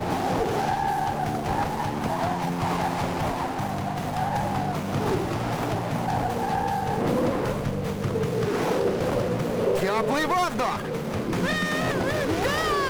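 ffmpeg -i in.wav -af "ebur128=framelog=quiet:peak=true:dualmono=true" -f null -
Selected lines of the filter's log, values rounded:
Integrated loudness:
  I:         -22.9 LUFS
  Threshold: -32.9 LUFS
Loudness range:
  LRA:         2.2 LU
  Threshold: -43.1 LUFS
  LRA low:   -24.2 LUFS
  LRA high:  -21.9 LUFS
True peak:
  Peak:      -13.2 dBFS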